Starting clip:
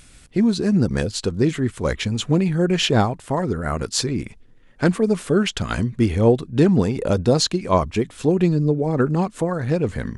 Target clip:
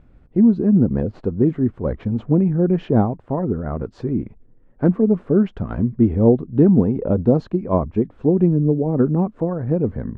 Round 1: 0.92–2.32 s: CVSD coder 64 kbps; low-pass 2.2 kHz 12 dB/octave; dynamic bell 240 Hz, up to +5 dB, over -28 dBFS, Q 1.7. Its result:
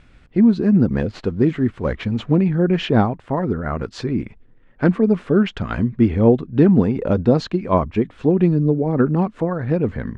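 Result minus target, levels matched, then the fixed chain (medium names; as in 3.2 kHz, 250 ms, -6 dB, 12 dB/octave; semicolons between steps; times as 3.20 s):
2 kHz band +12.0 dB
0.92–2.32 s: CVSD coder 64 kbps; low-pass 780 Hz 12 dB/octave; dynamic bell 240 Hz, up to +5 dB, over -28 dBFS, Q 1.7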